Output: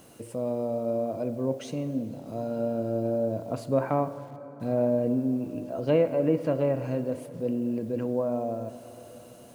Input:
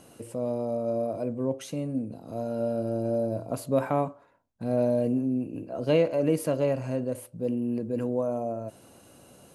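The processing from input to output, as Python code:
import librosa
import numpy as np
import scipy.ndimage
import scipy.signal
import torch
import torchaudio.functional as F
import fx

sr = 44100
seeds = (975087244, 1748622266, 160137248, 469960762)

y = fx.env_lowpass_down(x, sr, base_hz=2000.0, full_db=-21.0)
y = fx.quant_dither(y, sr, seeds[0], bits=10, dither='none')
y = fx.rev_plate(y, sr, seeds[1], rt60_s=4.4, hf_ratio=0.5, predelay_ms=0, drr_db=12.5)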